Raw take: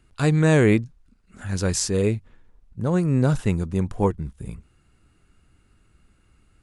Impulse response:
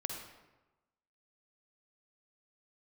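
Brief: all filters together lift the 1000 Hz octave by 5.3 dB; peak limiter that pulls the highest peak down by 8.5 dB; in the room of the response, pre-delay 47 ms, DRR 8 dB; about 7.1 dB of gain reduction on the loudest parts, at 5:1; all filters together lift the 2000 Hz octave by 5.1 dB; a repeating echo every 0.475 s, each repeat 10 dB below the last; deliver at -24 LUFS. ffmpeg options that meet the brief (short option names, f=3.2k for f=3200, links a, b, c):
-filter_complex "[0:a]equalizer=f=1k:t=o:g=5.5,equalizer=f=2k:t=o:g=4.5,acompressor=threshold=-19dB:ratio=5,alimiter=limit=-16dB:level=0:latency=1,aecho=1:1:475|950|1425|1900:0.316|0.101|0.0324|0.0104,asplit=2[a][b];[1:a]atrim=start_sample=2205,adelay=47[c];[b][c]afir=irnorm=-1:irlink=0,volume=-9dB[d];[a][d]amix=inputs=2:normalize=0,volume=3.5dB"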